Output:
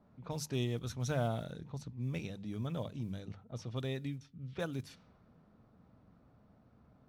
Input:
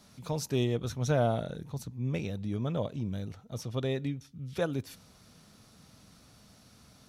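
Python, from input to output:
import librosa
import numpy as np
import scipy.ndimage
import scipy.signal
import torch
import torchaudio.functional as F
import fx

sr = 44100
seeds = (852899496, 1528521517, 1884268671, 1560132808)

y = fx.block_float(x, sr, bits=7)
y = fx.env_lowpass(y, sr, base_hz=890.0, full_db=-29.5)
y = fx.dynamic_eq(y, sr, hz=500.0, q=0.79, threshold_db=-40.0, ratio=4.0, max_db=-5)
y = fx.hum_notches(y, sr, base_hz=50, count=4)
y = F.gain(torch.from_numpy(y), -4.0).numpy()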